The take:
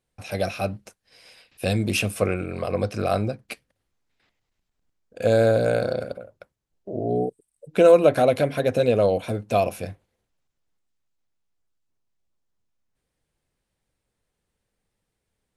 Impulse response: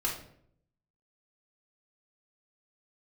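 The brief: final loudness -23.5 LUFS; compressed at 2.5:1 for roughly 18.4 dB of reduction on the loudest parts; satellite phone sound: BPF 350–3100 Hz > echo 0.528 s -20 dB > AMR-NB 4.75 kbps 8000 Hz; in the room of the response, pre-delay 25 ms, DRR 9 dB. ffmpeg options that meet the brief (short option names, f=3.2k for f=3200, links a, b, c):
-filter_complex "[0:a]acompressor=threshold=-39dB:ratio=2.5,asplit=2[a][b];[1:a]atrim=start_sample=2205,adelay=25[c];[b][c]afir=irnorm=-1:irlink=0,volume=-15dB[d];[a][d]amix=inputs=2:normalize=0,highpass=350,lowpass=3.1k,aecho=1:1:528:0.1,volume=16.5dB" -ar 8000 -c:a libopencore_amrnb -b:a 4750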